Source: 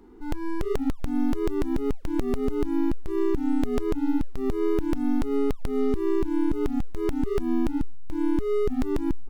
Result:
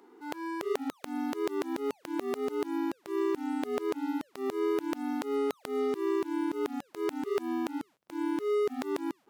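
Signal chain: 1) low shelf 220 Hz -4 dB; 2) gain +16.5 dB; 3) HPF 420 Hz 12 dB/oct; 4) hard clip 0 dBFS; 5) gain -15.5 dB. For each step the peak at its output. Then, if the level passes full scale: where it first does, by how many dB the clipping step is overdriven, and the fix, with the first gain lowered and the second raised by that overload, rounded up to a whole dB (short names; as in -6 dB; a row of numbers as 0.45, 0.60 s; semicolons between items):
-15.0, +1.5, +4.0, 0.0, -15.5 dBFS; step 2, 4.0 dB; step 2 +12.5 dB, step 5 -11.5 dB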